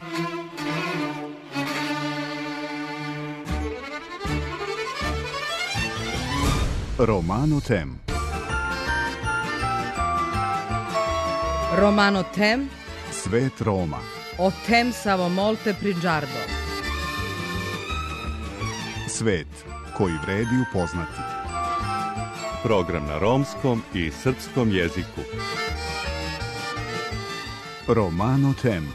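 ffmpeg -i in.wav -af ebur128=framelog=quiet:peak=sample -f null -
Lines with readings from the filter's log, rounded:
Integrated loudness:
  I:         -25.3 LUFS
  Threshold: -35.3 LUFS
Loudness range:
  LRA:         6.0 LU
  Threshold: -45.3 LUFS
  LRA low:   -28.7 LUFS
  LRA high:  -22.6 LUFS
Sample peak:
  Peak:       -5.9 dBFS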